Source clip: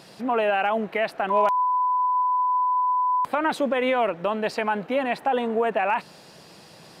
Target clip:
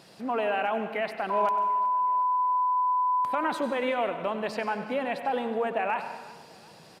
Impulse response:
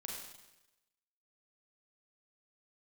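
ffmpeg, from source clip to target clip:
-filter_complex "[0:a]aecho=1:1:370|740|1110|1480:0.0891|0.0437|0.0214|0.0105,asplit=2[a][b];[1:a]atrim=start_sample=2205,asetrate=43659,aresample=44100,adelay=96[c];[b][c]afir=irnorm=-1:irlink=0,volume=-7dB[d];[a][d]amix=inputs=2:normalize=0,volume=-5.5dB"

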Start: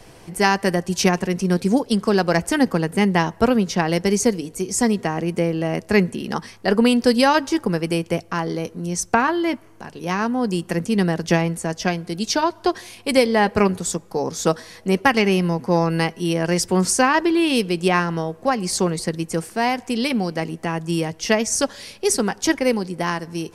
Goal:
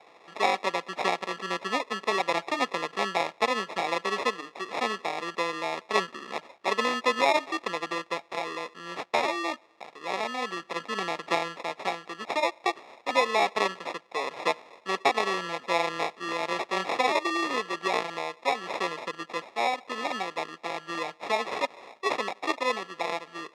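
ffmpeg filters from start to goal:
-af "acrusher=samples=29:mix=1:aa=0.000001,highpass=650,lowpass=4.1k,volume=-3dB"

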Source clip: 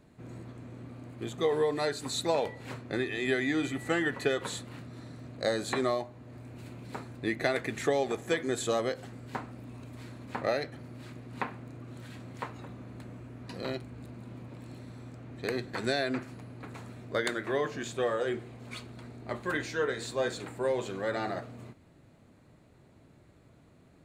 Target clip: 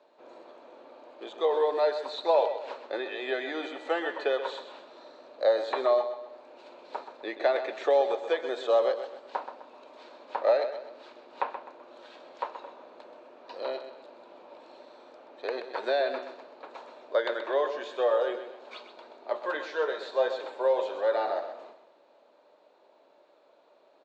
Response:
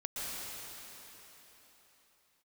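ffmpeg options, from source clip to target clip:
-filter_complex "[0:a]highpass=f=400:w=0.5412,highpass=f=400:w=1.3066,equalizer=f=580:t=q:w=4:g=9,equalizer=f=910:t=q:w=4:g=8,equalizer=f=2k:t=q:w=4:g=-7,equalizer=f=3.7k:t=q:w=4:g=3,lowpass=f=5.3k:w=0.5412,lowpass=f=5.3k:w=1.3066,acrossover=split=3600[a][b];[b]acompressor=threshold=-52dB:ratio=4:attack=1:release=60[c];[a][c]amix=inputs=2:normalize=0,aecho=1:1:128|256|384|512:0.316|0.12|0.0457|0.0174"

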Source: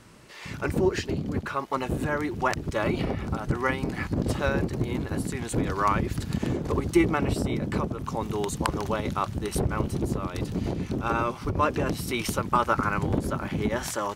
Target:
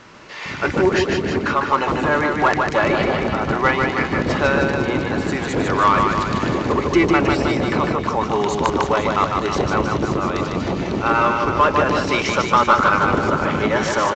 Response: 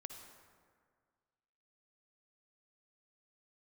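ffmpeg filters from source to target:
-filter_complex "[0:a]asplit=2[a][b];[b]highpass=f=720:p=1,volume=15dB,asoftclip=type=tanh:threshold=-8.5dB[c];[a][c]amix=inputs=2:normalize=0,lowpass=f=2.5k:p=1,volume=-6dB,aecho=1:1:150|315|496.5|696.2|915.8:0.631|0.398|0.251|0.158|0.1,volume=4dB" -ar 16000 -c:a pcm_mulaw

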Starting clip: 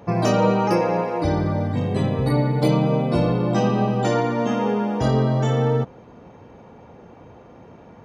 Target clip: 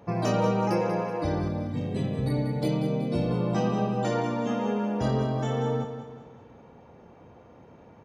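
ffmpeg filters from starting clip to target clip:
-filter_complex "[0:a]asettb=1/sr,asplit=3[a][b][c];[a]atrim=end=1.484[d];[b]atrim=start=1.48:end=3.31,asetpts=PTS-STARTPTS,afade=t=in:d=0.004:c=qsin,afade=t=out:st=1.826:d=0.004:c=qsin,equalizer=f=1.1k:w=1.2:g=-8.5[e];[c]atrim=start=3.306[f];[d][e]acrossfade=d=0.004:c1=hsin:c2=qsin[g];[g][f]acrossfade=d=0.004:c1=qsin:c2=hsin,aecho=1:1:188|376|564|752|940:0.335|0.147|0.0648|0.0285|0.0126,volume=-7dB"

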